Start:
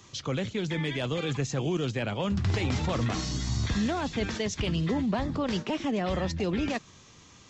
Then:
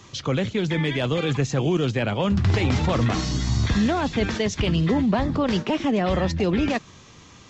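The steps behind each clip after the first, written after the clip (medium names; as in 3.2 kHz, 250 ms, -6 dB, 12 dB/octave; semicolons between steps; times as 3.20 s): treble shelf 5.8 kHz -7.5 dB; trim +7 dB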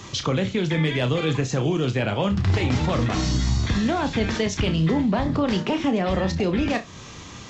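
compression 2:1, threshold -34 dBFS, peak gain reduction 10 dB; on a send: flutter echo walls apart 5.4 m, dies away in 0.21 s; on the sum: trim +7.5 dB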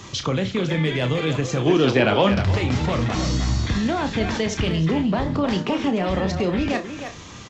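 speakerphone echo 310 ms, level -7 dB; time-frequency box 1.67–2.43 s, 210–6100 Hz +7 dB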